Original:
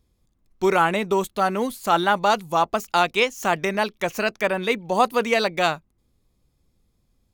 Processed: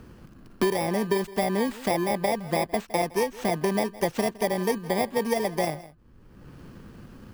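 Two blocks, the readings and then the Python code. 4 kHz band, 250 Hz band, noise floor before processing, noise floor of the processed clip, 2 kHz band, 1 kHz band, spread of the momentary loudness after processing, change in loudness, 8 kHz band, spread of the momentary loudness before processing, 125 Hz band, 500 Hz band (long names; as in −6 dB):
−8.0 dB, 0.0 dB, −69 dBFS, −52 dBFS, −9.0 dB, −8.5 dB, 3 LU, −4.5 dB, −0.5 dB, 5 LU, +1.0 dB, −3.0 dB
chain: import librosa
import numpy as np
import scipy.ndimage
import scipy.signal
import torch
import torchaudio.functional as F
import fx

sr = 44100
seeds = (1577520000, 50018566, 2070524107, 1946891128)

y = fx.bit_reversed(x, sr, seeds[0], block=32)
y = fx.lowpass(y, sr, hz=1300.0, slope=6)
y = fx.rider(y, sr, range_db=10, speed_s=0.5)
y = y + 10.0 ** (-22.0 / 20.0) * np.pad(y, (int(162 * sr / 1000.0), 0))[:len(y)]
y = fx.band_squash(y, sr, depth_pct=100)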